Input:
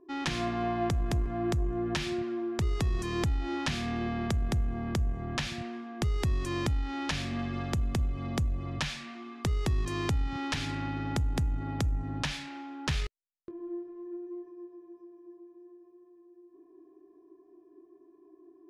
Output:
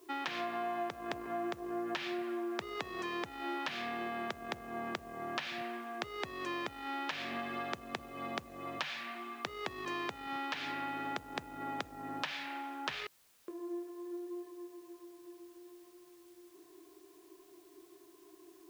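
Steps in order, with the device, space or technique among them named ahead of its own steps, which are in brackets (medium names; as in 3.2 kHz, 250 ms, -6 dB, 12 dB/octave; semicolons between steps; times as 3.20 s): baby monitor (band-pass 470–3300 Hz; compression, threshold -38 dBFS, peak gain reduction 9.5 dB; white noise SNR 26 dB); trim +4 dB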